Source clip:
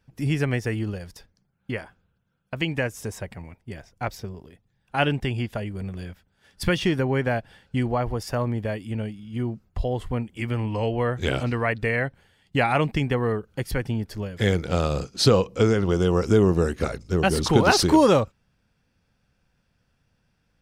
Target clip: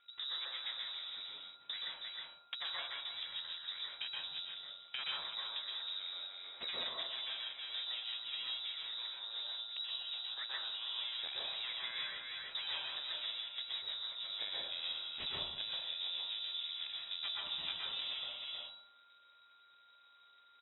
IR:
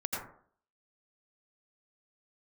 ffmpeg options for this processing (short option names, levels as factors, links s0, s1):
-filter_complex "[0:a]aecho=1:1:316:0.224,aeval=exprs='max(val(0),0)':c=same,flanger=delay=0.1:depth=9.9:regen=-89:speed=0.34:shape=triangular,lowpass=f=3300:t=q:w=0.5098,lowpass=f=3300:t=q:w=0.6013,lowpass=f=3300:t=q:w=0.9,lowpass=f=3300:t=q:w=2.563,afreqshift=-3900,acompressor=threshold=0.00447:ratio=10,aeval=exprs='val(0)+0.000141*sin(2*PI*1400*n/s)':c=same[s0];[1:a]atrim=start_sample=2205,asetrate=29988,aresample=44100[s1];[s0][s1]afir=irnorm=-1:irlink=0,volume=1.78"